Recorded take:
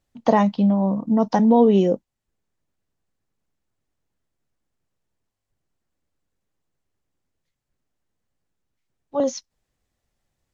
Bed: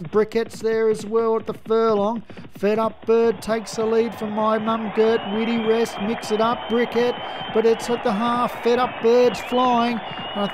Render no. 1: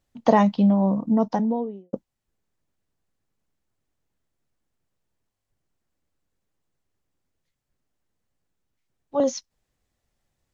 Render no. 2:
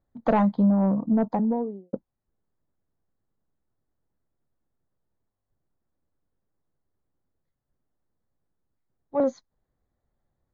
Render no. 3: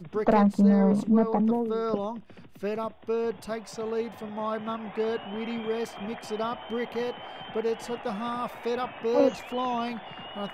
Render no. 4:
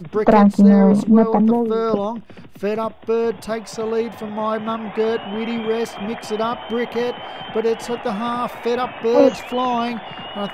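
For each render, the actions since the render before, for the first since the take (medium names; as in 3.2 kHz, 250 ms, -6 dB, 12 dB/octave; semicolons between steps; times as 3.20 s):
0.91–1.93 s: studio fade out
boxcar filter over 16 samples; saturation -13 dBFS, distortion -15 dB
add bed -11 dB
trim +9 dB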